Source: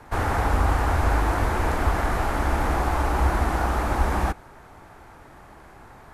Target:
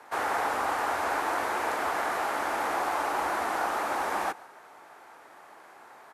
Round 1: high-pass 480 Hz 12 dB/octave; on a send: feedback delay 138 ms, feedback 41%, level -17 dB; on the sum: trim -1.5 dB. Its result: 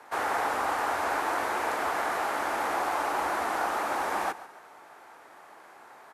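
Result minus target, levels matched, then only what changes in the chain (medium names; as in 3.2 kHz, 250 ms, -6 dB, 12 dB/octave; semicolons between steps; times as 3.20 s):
echo-to-direct +6.5 dB
change: feedback delay 138 ms, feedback 41%, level -23.5 dB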